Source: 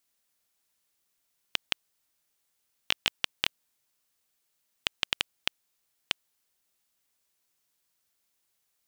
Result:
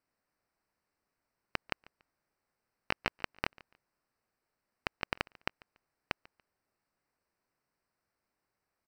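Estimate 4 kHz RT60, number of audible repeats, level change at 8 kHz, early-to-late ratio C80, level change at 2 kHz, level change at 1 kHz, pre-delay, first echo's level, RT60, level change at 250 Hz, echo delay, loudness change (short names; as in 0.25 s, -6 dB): none, 1, -15.5 dB, none, -3.5 dB, +2.5 dB, none, -24.0 dB, none, +4.0 dB, 0.143 s, -7.5 dB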